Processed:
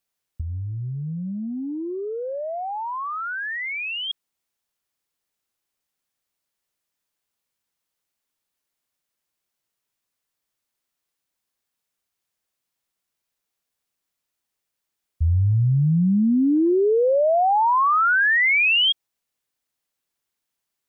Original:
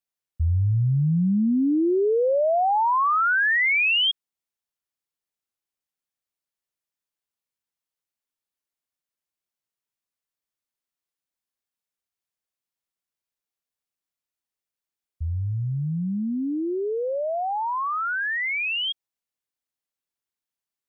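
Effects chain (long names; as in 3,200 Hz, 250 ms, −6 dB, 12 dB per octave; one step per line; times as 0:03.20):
0:16.24–0:16.72: parametric band 1,800 Hz +13 dB 0.66 octaves
compressor whose output falls as the input rises −26 dBFS, ratio −0.5
level +5 dB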